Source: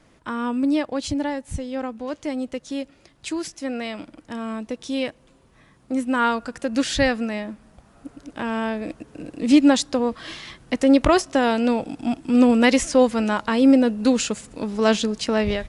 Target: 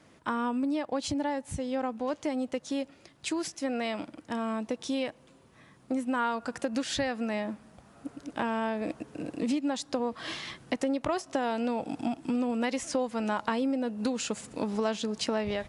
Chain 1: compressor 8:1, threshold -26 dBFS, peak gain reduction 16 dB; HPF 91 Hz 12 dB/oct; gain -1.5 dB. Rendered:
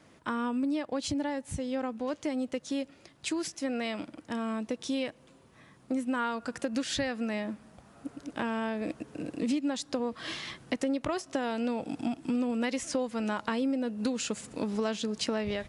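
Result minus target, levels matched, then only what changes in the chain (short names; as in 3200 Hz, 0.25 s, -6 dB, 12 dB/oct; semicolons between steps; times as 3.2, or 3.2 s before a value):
1000 Hz band -3.0 dB
add after compressor: dynamic EQ 820 Hz, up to +5 dB, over -46 dBFS, Q 1.5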